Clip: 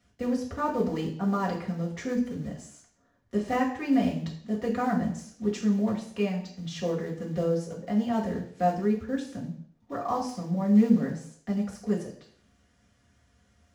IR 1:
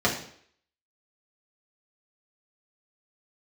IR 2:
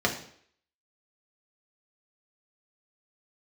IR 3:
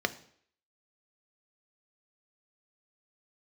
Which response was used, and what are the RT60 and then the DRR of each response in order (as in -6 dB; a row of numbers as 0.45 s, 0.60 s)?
1; 0.60 s, 0.60 s, 0.60 s; -4.5 dB, -0.5 dB, 9.5 dB